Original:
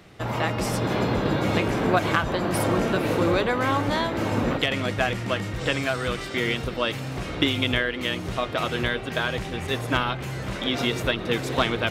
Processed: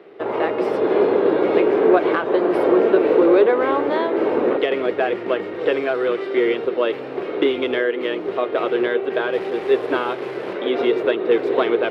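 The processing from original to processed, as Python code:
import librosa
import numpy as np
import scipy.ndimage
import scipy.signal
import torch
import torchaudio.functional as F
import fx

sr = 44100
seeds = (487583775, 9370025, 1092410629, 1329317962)

p1 = fx.delta_mod(x, sr, bps=64000, step_db=-27.0, at=(9.33, 10.53))
p2 = fx.high_shelf(p1, sr, hz=9500.0, db=8.0)
p3 = 10.0 ** (-16.5 / 20.0) * (np.abs((p2 / 10.0 ** (-16.5 / 20.0) + 3.0) % 4.0 - 2.0) - 1.0)
p4 = p2 + (p3 * 10.0 ** (-8.0 / 20.0))
p5 = fx.highpass_res(p4, sr, hz=400.0, q=4.8)
y = fx.air_absorb(p5, sr, metres=400.0)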